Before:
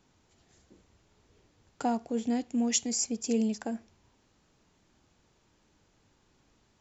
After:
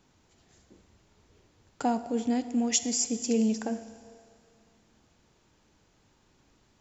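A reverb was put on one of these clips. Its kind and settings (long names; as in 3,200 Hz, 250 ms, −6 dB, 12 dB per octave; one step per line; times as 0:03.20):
four-comb reverb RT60 2.2 s, combs from 25 ms, DRR 12 dB
level +2 dB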